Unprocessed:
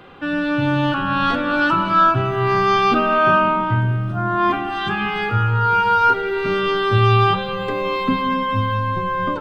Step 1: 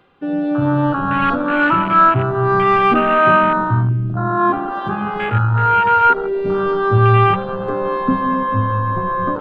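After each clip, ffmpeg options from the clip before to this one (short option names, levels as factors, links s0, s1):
-af "afwtdn=0.1,areverse,acompressor=mode=upward:threshold=0.0282:ratio=2.5,areverse,volume=1.41"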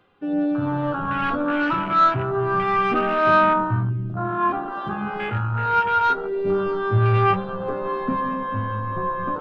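-af "asoftclip=type=tanh:threshold=0.531,flanger=delay=9.6:depth=4.4:regen=51:speed=0.29:shape=sinusoidal,volume=0.841"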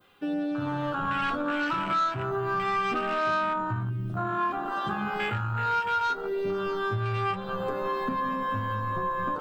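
-af "acompressor=threshold=0.0562:ratio=6,crystalizer=i=6.5:c=0,adynamicequalizer=threshold=0.0141:dfrequency=2700:dqfactor=0.92:tfrequency=2700:tqfactor=0.92:attack=5:release=100:ratio=0.375:range=2:mode=cutabove:tftype=bell,volume=0.75"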